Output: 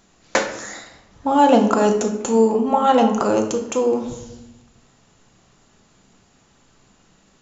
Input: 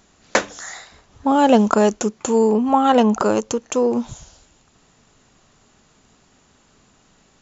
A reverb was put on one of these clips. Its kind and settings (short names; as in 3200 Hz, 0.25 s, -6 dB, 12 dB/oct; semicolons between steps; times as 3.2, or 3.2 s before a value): shoebox room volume 340 m³, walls mixed, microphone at 0.76 m; gain -2 dB